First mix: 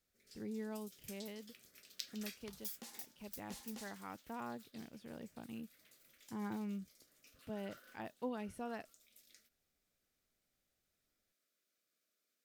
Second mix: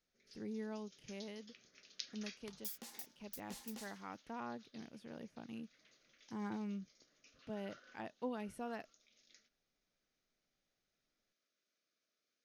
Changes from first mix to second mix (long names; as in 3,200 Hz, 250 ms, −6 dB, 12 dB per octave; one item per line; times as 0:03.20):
first sound: add linear-phase brick-wall low-pass 6,800 Hz
master: add parametric band 70 Hz −13.5 dB 0.65 octaves